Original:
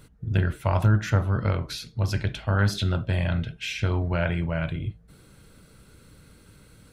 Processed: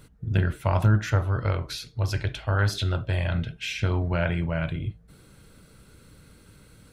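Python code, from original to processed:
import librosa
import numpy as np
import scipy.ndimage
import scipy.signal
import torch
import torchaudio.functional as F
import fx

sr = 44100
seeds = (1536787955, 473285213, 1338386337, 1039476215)

y = fx.peak_eq(x, sr, hz=200.0, db=-10.0, octaves=0.56, at=(1.02, 3.35))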